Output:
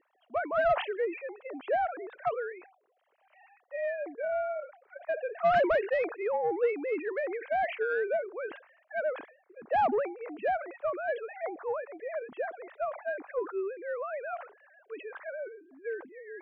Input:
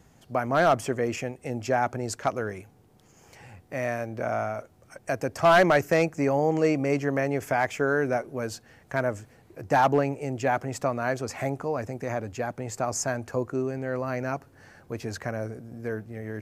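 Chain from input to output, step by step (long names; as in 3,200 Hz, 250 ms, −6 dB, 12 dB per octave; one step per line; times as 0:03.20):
three sine waves on the formant tracks
mid-hump overdrive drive 14 dB, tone 1,600 Hz, clips at −7 dBFS
level that may fall only so fast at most 130 dB per second
level −9 dB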